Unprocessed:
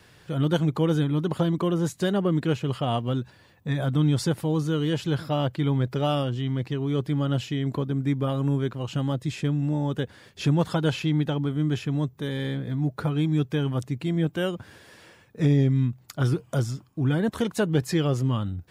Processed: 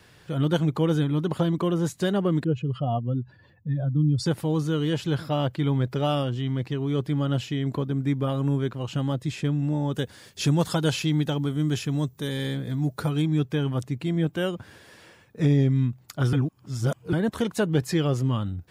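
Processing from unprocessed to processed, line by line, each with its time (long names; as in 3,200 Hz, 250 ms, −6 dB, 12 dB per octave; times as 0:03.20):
0:02.44–0:04.26: expanding power law on the bin magnitudes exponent 1.8
0:09.94–0:13.22: bass and treble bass 0 dB, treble +10 dB
0:16.33–0:17.13: reverse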